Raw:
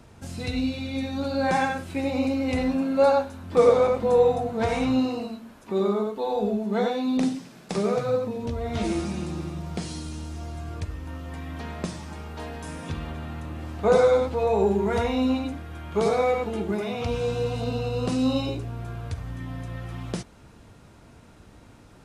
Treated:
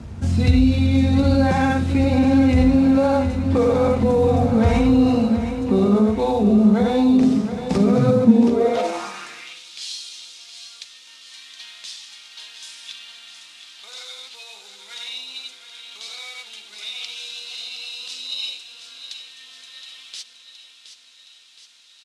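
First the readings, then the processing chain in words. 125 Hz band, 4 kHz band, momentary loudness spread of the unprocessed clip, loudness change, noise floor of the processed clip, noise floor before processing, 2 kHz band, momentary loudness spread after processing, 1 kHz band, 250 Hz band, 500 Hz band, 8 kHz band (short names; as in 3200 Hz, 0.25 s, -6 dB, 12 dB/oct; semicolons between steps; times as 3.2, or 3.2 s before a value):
+9.0 dB, +8.5 dB, 16 LU, +7.5 dB, -49 dBFS, -51 dBFS, +2.5 dB, 21 LU, +1.5 dB, +9.5 dB, +0.5 dB, +5.0 dB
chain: CVSD 64 kbps; bell 220 Hz +6.5 dB 0.5 oct; limiter -19 dBFS, peak gain reduction 11.5 dB; LPF 7700 Hz 12 dB/oct; feedback echo 0.719 s, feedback 59%, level -10 dB; high-pass sweep 61 Hz -> 3600 Hz, 7.74–9.65; low shelf 170 Hz +10.5 dB; notches 60/120/180 Hz; gain +6 dB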